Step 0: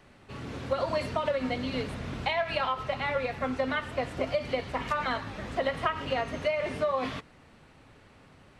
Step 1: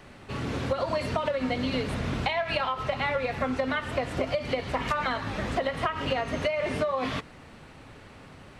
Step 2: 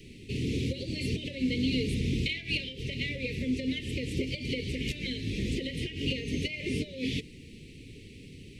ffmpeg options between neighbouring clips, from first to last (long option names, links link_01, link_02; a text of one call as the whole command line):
ffmpeg -i in.wav -af "acompressor=threshold=-32dB:ratio=6,volume=7.5dB" out.wav
ffmpeg -i in.wav -filter_complex "[0:a]asplit=2[link_01][link_02];[link_02]asoftclip=type=tanh:threshold=-25.5dB,volume=-7dB[link_03];[link_01][link_03]amix=inputs=2:normalize=0,asuperstop=centerf=1000:order=12:qfactor=0.57,volume=-1dB" out.wav